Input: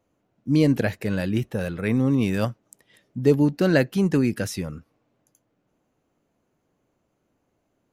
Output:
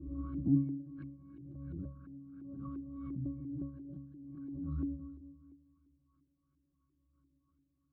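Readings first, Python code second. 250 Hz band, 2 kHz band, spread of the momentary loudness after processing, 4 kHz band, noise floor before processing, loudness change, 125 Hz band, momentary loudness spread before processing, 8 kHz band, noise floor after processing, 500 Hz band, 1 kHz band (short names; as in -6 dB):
-15.0 dB, under -40 dB, 19 LU, under -40 dB, -73 dBFS, -17.0 dB, -15.0 dB, 10 LU, under -35 dB, -79 dBFS, -34.0 dB, -23.0 dB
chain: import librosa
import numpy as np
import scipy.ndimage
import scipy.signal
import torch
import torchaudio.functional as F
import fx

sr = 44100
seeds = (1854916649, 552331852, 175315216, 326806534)

y = fx.reverse_delay_fb(x, sr, ms=103, feedback_pct=59, wet_db=-9.5)
y = fx.graphic_eq(y, sr, hz=(125, 500, 1000, 2000, 4000, 8000), db=(-11, -12, -7, -4, 11, 6))
y = 10.0 ** (-15.5 / 20.0) * np.tanh(y / 10.0 ** (-15.5 / 20.0))
y = fx.fixed_phaser(y, sr, hz=2300.0, stages=6)
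y = fx.notch_comb(y, sr, f0_hz=880.0)
y = fx.rider(y, sr, range_db=10, speed_s=0.5)
y = fx.gate_flip(y, sr, shuts_db=-23.0, range_db=-32)
y = fx.octave_resonator(y, sr, note='C#', decay_s=0.59)
y = fx.rev_spring(y, sr, rt60_s=2.3, pass_ms=(39,), chirp_ms=50, drr_db=14.0)
y = fx.filter_lfo_lowpass(y, sr, shape='saw_up', hz=2.9, low_hz=330.0, high_hz=1900.0, q=3.5)
y = fx.low_shelf(y, sr, hz=110.0, db=10.0)
y = fx.pre_swell(y, sr, db_per_s=27.0)
y = y * 10.0 ** (13.5 / 20.0)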